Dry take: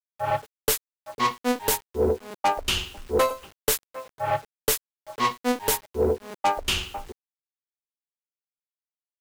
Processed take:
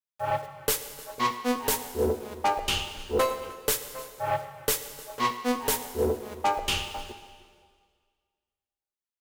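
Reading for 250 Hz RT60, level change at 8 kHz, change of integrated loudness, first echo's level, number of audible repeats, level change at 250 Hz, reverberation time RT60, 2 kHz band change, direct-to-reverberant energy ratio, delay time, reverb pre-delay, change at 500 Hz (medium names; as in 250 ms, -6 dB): 1.7 s, -2.5 dB, -2.5 dB, -21.0 dB, 1, -2.0 dB, 1.8 s, -2.5 dB, 8.5 dB, 307 ms, 5 ms, -3.0 dB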